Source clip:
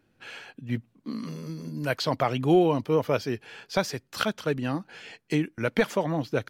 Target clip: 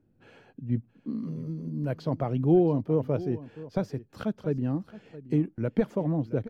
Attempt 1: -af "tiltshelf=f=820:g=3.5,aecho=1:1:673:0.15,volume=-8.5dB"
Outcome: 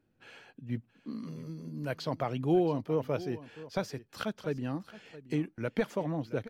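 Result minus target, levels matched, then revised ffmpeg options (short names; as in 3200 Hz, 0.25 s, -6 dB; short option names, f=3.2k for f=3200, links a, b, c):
1000 Hz band +5.5 dB
-af "tiltshelf=f=820:g=12,aecho=1:1:673:0.15,volume=-8.5dB"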